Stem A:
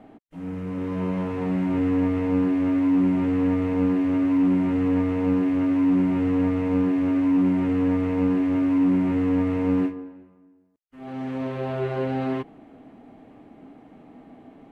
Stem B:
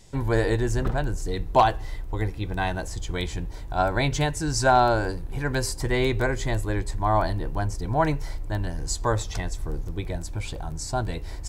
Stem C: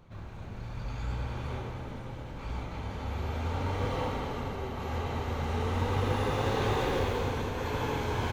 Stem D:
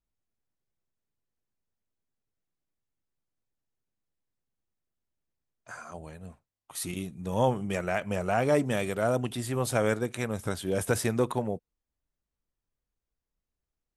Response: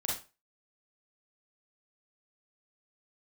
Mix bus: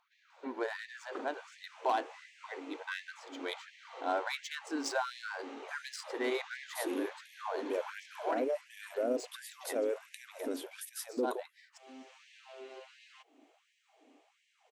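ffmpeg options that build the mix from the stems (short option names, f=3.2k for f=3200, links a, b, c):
-filter_complex "[0:a]bass=f=250:g=1,treble=f=4k:g=14,acompressor=threshold=-37dB:ratio=2,aexciter=amount=2.5:drive=3.8:freq=2.3k,adelay=800,volume=-13.5dB[a];[1:a]adynamicsmooth=sensitivity=3:basefreq=2.9k,adelay=300,volume=-6.5dB[b];[2:a]volume=-9dB[c];[3:a]equalizer=f=125:t=o:w=1:g=5,equalizer=f=250:t=o:w=1:g=7,equalizer=f=500:t=o:w=1:g=7,equalizer=f=1k:t=o:w=1:g=-9,equalizer=f=2k:t=o:w=1:g=-6,equalizer=f=4k:t=o:w=1:g=-4,equalizer=f=8k:t=o:w=1:g=-10,alimiter=limit=-17dB:level=0:latency=1:release=25,volume=0.5dB[d];[b][d]amix=inputs=2:normalize=0,alimiter=limit=-22.5dB:level=0:latency=1:release=24,volume=0dB[e];[a][c]amix=inputs=2:normalize=0,lowpass=f=6.8k:w=0.5412,lowpass=f=6.8k:w=1.3066,alimiter=level_in=9.5dB:limit=-24dB:level=0:latency=1:release=210,volume=-9.5dB,volume=0dB[f];[e][f]amix=inputs=2:normalize=0,afftfilt=real='re*gte(b*sr/1024,220*pow(1700/220,0.5+0.5*sin(2*PI*1.4*pts/sr)))':imag='im*gte(b*sr/1024,220*pow(1700/220,0.5+0.5*sin(2*PI*1.4*pts/sr)))':win_size=1024:overlap=0.75"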